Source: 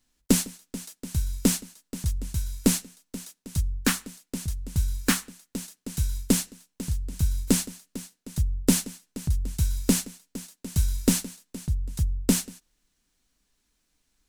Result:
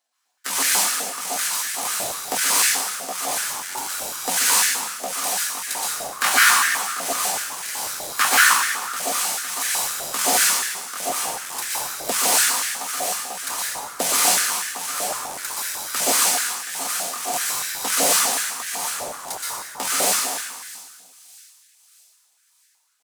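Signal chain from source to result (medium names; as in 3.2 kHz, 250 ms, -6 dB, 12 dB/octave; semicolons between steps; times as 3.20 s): in parallel at -10 dB: fuzz box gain 43 dB, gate -52 dBFS; on the sum: gain riding 2 s; tempo 0.62×; on a send: feedback echo behind a high-pass 631 ms, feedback 42%, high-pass 3.2 kHz, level -18 dB; on the sum: plate-style reverb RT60 1.5 s, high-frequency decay 0.75×, pre-delay 110 ms, DRR -6.5 dB; step-sequenced high-pass 8 Hz 680–1700 Hz; trim -3 dB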